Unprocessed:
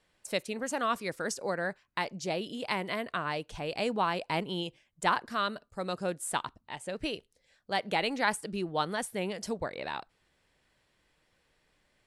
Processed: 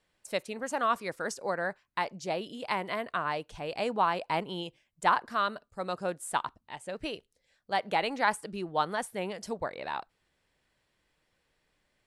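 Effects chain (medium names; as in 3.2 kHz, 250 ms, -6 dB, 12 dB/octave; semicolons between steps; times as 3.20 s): dynamic bell 950 Hz, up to +7 dB, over -42 dBFS, Q 0.71; trim -3.5 dB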